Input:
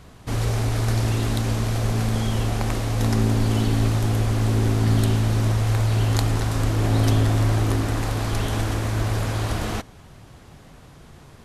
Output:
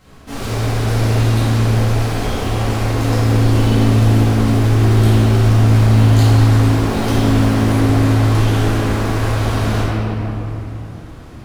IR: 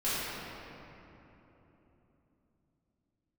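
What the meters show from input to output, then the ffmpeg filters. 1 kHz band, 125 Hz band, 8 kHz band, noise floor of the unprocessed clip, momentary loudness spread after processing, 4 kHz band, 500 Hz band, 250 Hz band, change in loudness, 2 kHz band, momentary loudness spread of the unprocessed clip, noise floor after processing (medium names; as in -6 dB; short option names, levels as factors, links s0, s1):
+7.5 dB, +8.0 dB, +3.0 dB, -47 dBFS, 11 LU, +6.0 dB, +8.5 dB, +9.5 dB, +7.5 dB, +7.5 dB, 5 LU, -34 dBFS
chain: -filter_complex "[0:a]lowshelf=f=85:g=-6,asplit=2[s0][s1];[s1]acrusher=bits=3:mode=log:mix=0:aa=0.000001,volume=0.501[s2];[s0][s2]amix=inputs=2:normalize=0[s3];[1:a]atrim=start_sample=2205[s4];[s3][s4]afir=irnorm=-1:irlink=0,volume=0.501"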